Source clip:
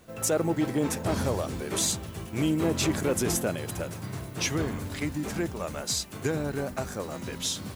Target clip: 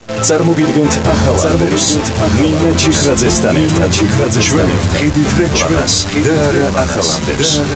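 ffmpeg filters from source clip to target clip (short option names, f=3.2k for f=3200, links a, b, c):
-filter_complex "[0:a]aecho=1:1:1140:0.562,asettb=1/sr,asplit=3[a][b][c];[a]atrim=end=1.684[d];[b]atrim=start=1.68:end=2.65,asetpts=PTS-STARTPTS,afade=t=in:d=0.004:c=qsin,afade=t=out:st=0.966:d=0.004:c=qsin,acompressor=threshold=-26dB:ratio=6[e];[c]atrim=start=2.646[f];[d][e]acrossfade=d=0.004:c1=hsin:c2=qsin[g];[g][f]acrossfade=d=0.004:c1=qsin:c2=hsin,flanger=delay=8.6:depth=5.9:regen=-4:speed=0.47:shape=triangular,acrusher=bits=8:dc=4:mix=0:aa=0.000001,aresample=16000,aresample=44100,alimiter=level_in=24dB:limit=-1dB:release=50:level=0:latency=1,volume=-1dB"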